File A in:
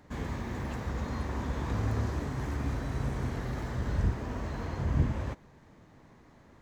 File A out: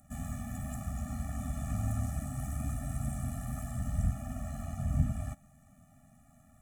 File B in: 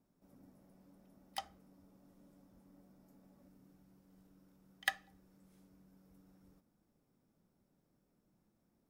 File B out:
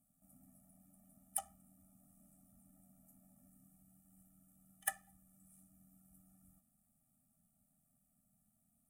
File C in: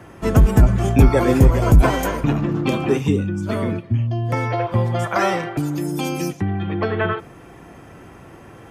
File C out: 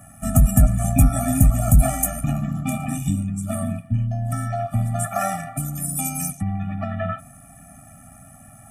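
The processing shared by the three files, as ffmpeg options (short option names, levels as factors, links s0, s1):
-af "bandreject=f=1900:w=15,tremolo=f=85:d=0.462,highshelf=f=6500:t=q:w=3:g=14,afftfilt=real='re*eq(mod(floor(b*sr/1024/280),2),0)':imag='im*eq(mod(floor(b*sr/1024/280),2),0)':win_size=1024:overlap=0.75"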